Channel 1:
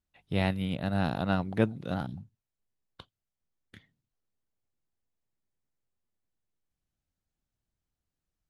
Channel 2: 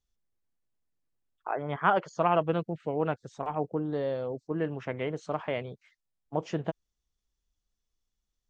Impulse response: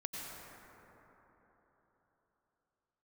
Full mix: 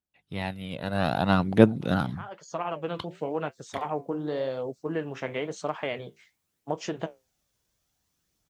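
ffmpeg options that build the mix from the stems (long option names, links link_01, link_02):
-filter_complex "[0:a]aphaser=in_gain=1:out_gain=1:delay=2.1:decay=0.39:speed=0.59:type=triangular,volume=-5dB,asplit=2[link_01][link_02];[1:a]highshelf=frequency=4100:gain=11.5,acompressor=threshold=-26dB:ratio=6,flanger=delay=6.6:depth=9.9:regen=-64:speed=0.94:shape=sinusoidal,adelay=350,volume=-10dB[link_03];[link_02]apad=whole_len=390027[link_04];[link_03][link_04]sidechaincompress=threshold=-48dB:ratio=8:attack=28:release=480[link_05];[link_01][link_05]amix=inputs=2:normalize=0,highpass=frequency=180:poles=1,dynaudnorm=framelen=630:gausssize=3:maxgain=16.5dB"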